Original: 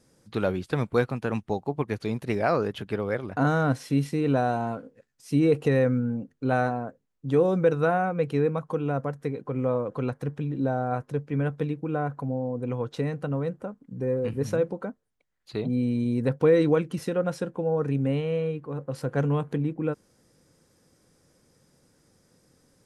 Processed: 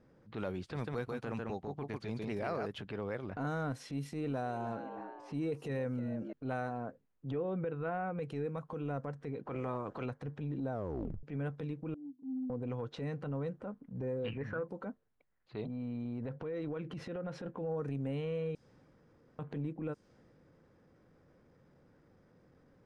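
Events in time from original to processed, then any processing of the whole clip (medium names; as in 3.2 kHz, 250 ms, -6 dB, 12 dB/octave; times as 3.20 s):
0.60–2.66 s: delay 146 ms -5 dB
3.98–6.33 s: frequency-shifting echo 312 ms, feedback 39%, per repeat +90 Hz, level -17 dB
7.31–8.18 s: steep low-pass 3.3 kHz
9.45–10.04 s: spectral peaks clipped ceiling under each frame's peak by 15 dB
10.72 s: tape stop 0.51 s
11.94–12.50 s: Butterworth band-pass 270 Hz, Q 7.6
14.19–14.67 s: resonant low-pass 4 kHz -> 1 kHz, resonance Q 8.5
15.64–17.46 s: compression 10:1, threshold -31 dBFS
18.55–19.39 s: room tone
whole clip: level-controlled noise filter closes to 1.9 kHz, open at -20.5 dBFS; compression 4:1, threshold -35 dBFS; transient shaper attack -8 dB, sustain +1 dB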